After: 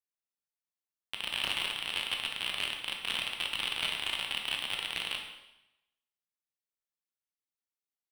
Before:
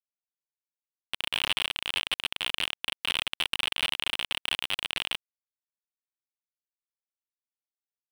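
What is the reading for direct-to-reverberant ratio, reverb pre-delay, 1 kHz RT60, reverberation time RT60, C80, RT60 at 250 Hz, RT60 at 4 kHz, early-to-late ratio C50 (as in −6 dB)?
1.5 dB, 7 ms, 0.90 s, 0.90 s, 7.5 dB, 0.90 s, 0.90 s, 5.0 dB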